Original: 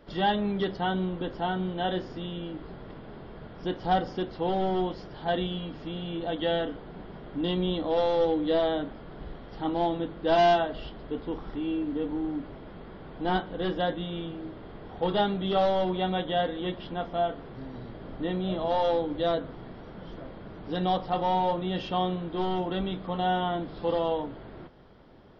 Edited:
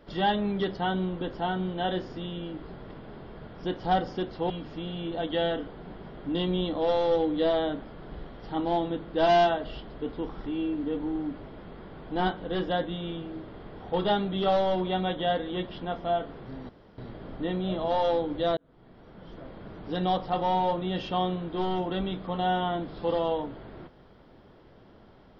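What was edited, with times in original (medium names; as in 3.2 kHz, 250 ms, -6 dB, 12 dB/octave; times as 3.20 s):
4.50–5.59 s: delete
17.78 s: insert room tone 0.29 s
19.37–20.46 s: fade in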